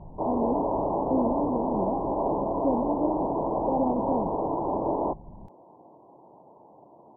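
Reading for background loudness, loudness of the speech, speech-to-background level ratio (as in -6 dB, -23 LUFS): -28.5 LUFS, -31.0 LUFS, -2.5 dB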